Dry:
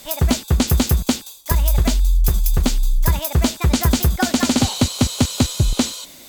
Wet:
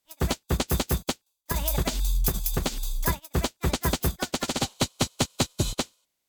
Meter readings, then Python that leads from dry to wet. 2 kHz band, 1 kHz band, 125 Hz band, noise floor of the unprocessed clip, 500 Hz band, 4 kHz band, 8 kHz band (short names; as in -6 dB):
-6.0 dB, -5.5 dB, -11.0 dB, -42 dBFS, -5.0 dB, -7.0 dB, -7.5 dB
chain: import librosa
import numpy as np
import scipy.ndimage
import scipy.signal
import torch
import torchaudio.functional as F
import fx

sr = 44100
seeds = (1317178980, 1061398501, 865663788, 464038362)

y = fx.spec_clip(x, sr, under_db=13)
y = fx.upward_expand(y, sr, threshold_db=-33.0, expansion=2.5)
y = F.gain(torch.from_numpy(y), -6.5).numpy()